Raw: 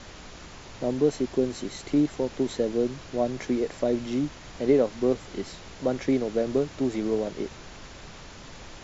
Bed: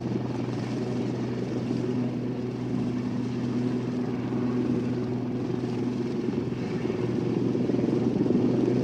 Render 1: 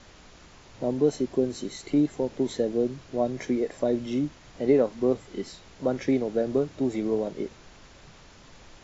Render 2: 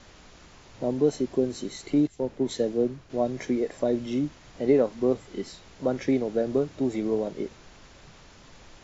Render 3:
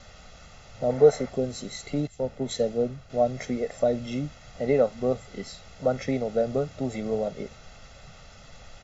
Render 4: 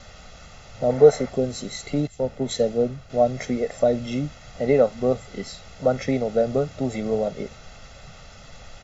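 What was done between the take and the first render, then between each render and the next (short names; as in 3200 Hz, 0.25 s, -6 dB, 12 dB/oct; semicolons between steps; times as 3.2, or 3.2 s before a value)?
noise print and reduce 7 dB
2.07–3.1 three-band expander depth 70%
0.9–1.29 spectral gain 430–2400 Hz +8 dB; comb 1.5 ms, depth 75%
gain +4 dB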